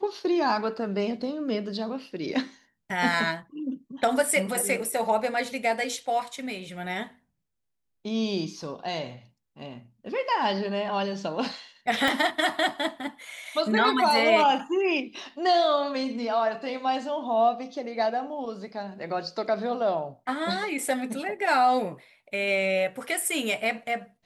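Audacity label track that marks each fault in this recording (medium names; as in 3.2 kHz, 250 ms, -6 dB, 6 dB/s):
12.080000	12.080000	pop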